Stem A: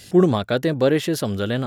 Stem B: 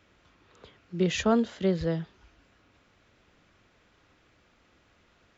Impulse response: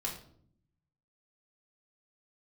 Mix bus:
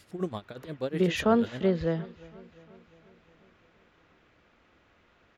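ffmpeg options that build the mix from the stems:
-filter_complex "[0:a]tremolo=f=8.3:d=0.88,volume=-13dB[link_01];[1:a]bass=frequency=250:gain=-3,treble=frequency=4000:gain=-10,volume=1.5dB,asplit=2[link_02][link_03];[link_03]volume=-22dB,aecho=0:1:354|708|1062|1416|1770|2124|2478|2832|3186:1|0.58|0.336|0.195|0.113|0.0656|0.0381|0.0221|0.0128[link_04];[link_01][link_02][link_04]amix=inputs=3:normalize=0"

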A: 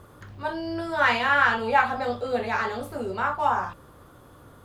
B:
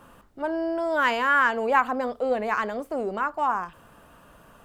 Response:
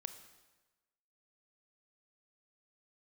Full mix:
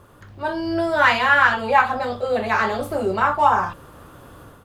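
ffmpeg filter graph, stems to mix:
-filter_complex "[0:a]volume=-1dB[link_01];[1:a]adelay=1.2,volume=-6dB[link_02];[link_01][link_02]amix=inputs=2:normalize=0,dynaudnorm=framelen=340:gausssize=3:maxgain=8dB"

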